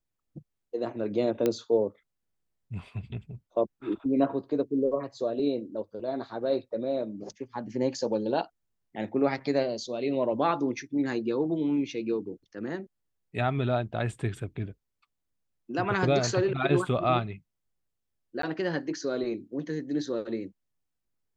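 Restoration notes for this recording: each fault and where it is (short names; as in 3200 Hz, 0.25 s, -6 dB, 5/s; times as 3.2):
1.46 pop -13 dBFS
18.42–18.43 gap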